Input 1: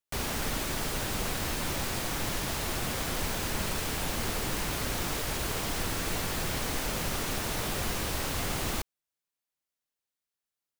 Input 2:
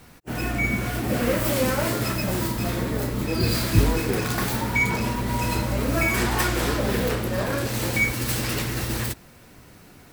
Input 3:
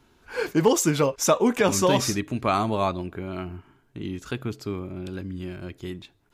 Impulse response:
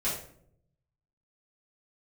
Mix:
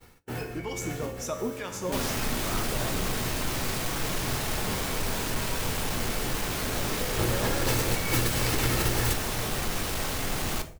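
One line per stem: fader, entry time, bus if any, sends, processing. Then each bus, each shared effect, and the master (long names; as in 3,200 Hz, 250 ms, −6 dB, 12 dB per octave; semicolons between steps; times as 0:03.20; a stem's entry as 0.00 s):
+2.5 dB, 1.80 s, send −13 dB, soft clipping −29.5 dBFS, distortion −13 dB
−2.5 dB, 0.00 s, send −17.5 dB, comb filter 2.3 ms, depth 43%; compressor whose output falls as the input rises −28 dBFS, ratio −0.5; automatic ducking −16 dB, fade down 0.45 s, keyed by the third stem
+0.5 dB, 0.00 s, no send, two-band tremolo in antiphase 2.1 Hz, crossover 970 Hz; tuned comb filter 89 Hz, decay 1 s, harmonics all, mix 80%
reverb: on, RT60 0.65 s, pre-delay 3 ms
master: downward expander −39 dBFS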